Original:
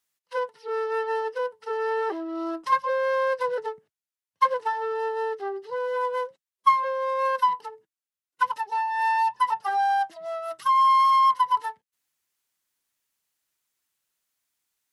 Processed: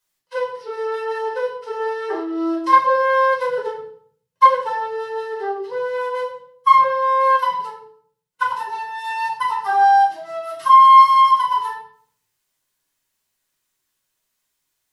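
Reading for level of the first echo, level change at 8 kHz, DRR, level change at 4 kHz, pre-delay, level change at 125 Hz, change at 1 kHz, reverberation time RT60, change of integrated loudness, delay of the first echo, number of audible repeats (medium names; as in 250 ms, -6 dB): no echo, no reading, -3.5 dB, +6.5 dB, 7 ms, no reading, +8.0 dB, 0.60 s, +7.5 dB, no echo, no echo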